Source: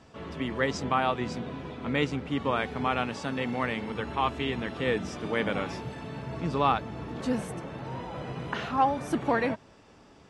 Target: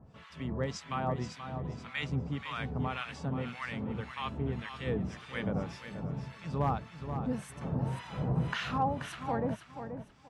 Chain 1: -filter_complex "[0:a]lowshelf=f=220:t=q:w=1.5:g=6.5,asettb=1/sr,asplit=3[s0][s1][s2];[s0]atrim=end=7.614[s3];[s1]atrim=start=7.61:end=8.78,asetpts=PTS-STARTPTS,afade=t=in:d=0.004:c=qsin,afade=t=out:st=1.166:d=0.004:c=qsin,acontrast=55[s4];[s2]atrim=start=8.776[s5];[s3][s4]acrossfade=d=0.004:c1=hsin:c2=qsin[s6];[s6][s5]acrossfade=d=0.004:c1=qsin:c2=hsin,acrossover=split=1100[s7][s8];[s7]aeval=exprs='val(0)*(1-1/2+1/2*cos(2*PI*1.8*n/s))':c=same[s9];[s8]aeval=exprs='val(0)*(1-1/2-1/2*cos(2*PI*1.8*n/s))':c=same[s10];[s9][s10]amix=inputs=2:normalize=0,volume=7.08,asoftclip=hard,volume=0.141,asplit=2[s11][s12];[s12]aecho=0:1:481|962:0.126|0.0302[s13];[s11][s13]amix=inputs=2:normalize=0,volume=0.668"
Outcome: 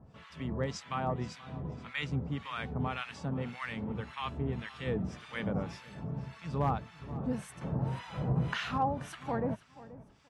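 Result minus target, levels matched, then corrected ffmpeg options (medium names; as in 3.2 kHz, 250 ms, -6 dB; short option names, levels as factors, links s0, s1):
echo-to-direct -9 dB
-filter_complex "[0:a]lowshelf=f=220:t=q:w=1.5:g=6.5,asettb=1/sr,asplit=3[s0][s1][s2];[s0]atrim=end=7.614[s3];[s1]atrim=start=7.61:end=8.78,asetpts=PTS-STARTPTS,afade=t=in:d=0.004:c=qsin,afade=t=out:st=1.166:d=0.004:c=qsin,acontrast=55[s4];[s2]atrim=start=8.776[s5];[s3][s4]acrossfade=d=0.004:c1=hsin:c2=qsin[s6];[s6][s5]acrossfade=d=0.004:c1=qsin:c2=hsin,acrossover=split=1100[s7][s8];[s7]aeval=exprs='val(0)*(1-1/2+1/2*cos(2*PI*1.8*n/s))':c=same[s9];[s8]aeval=exprs='val(0)*(1-1/2-1/2*cos(2*PI*1.8*n/s))':c=same[s10];[s9][s10]amix=inputs=2:normalize=0,volume=7.08,asoftclip=hard,volume=0.141,asplit=2[s11][s12];[s12]aecho=0:1:481|962|1443:0.355|0.0852|0.0204[s13];[s11][s13]amix=inputs=2:normalize=0,volume=0.668"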